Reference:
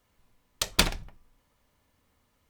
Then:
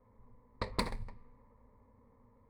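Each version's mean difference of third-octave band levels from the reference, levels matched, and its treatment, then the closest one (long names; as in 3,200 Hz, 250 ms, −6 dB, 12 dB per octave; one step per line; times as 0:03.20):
8.5 dB: running median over 15 samples
low-pass that shuts in the quiet parts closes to 1,100 Hz, open at −29.5 dBFS
EQ curve with evenly spaced ripples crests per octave 0.94, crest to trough 12 dB
downward compressor 3 to 1, threshold −41 dBFS, peak gain reduction 15 dB
level +6 dB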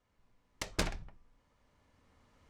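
4.5 dB: phase distortion by the signal itself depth 0.94 ms
camcorder AGC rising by 7.2 dB per second
low-pass filter 5,800 Hz 12 dB per octave
parametric band 3,500 Hz −4 dB 1.2 octaves
level −6 dB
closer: second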